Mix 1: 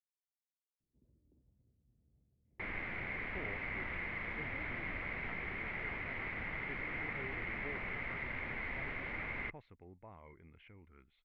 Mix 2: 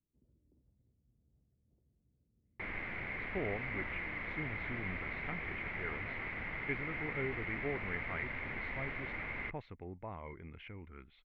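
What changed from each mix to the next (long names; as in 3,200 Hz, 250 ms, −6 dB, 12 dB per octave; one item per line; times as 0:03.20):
speech +9.5 dB
first sound: entry −0.80 s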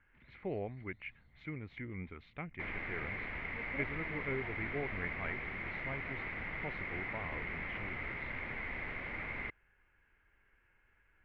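speech: entry −2.90 s
first sound: remove transistor ladder low-pass 530 Hz, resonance 35%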